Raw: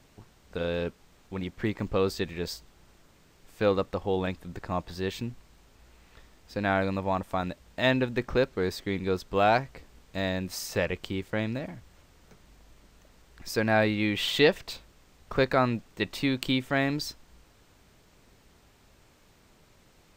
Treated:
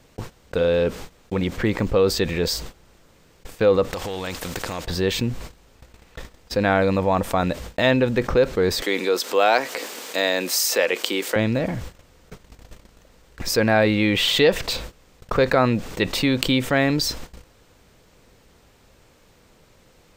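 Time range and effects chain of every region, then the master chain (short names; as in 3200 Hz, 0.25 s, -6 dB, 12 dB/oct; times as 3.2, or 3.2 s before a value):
3.93–4.85 compressor 8:1, threshold -36 dBFS + spectral compressor 2:1
8.82–11.36 HPF 260 Hz 24 dB/oct + tilt +2 dB/oct + upward compressor, threshold -41 dBFS
whole clip: gate -50 dBFS, range -37 dB; bell 500 Hz +7 dB 0.24 oct; fast leveller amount 50%; gain +1.5 dB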